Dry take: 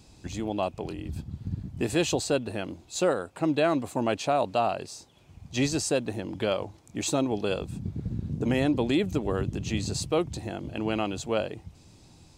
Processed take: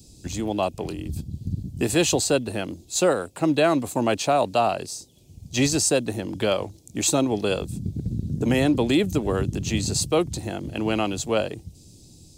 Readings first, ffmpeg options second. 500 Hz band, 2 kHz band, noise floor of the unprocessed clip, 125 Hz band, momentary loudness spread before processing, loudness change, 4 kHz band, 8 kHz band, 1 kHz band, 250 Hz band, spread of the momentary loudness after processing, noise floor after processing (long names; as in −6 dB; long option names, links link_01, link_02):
+4.5 dB, +5.0 dB, −55 dBFS, +4.5 dB, 11 LU, +5.0 dB, +6.0 dB, +9.5 dB, +4.5 dB, +4.5 dB, 11 LU, −51 dBFS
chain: -filter_complex "[0:a]highshelf=frequency=7200:gain=10,acrossover=split=300|550|3300[link_01][link_02][link_03][link_04];[link_03]aeval=exprs='sgn(val(0))*max(abs(val(0))-0.00141,0)':channel_layout=same[link_05];[link_01][link_02][link_05][link_04]amix=inputs=4:normalize=0,volume=4.5dB"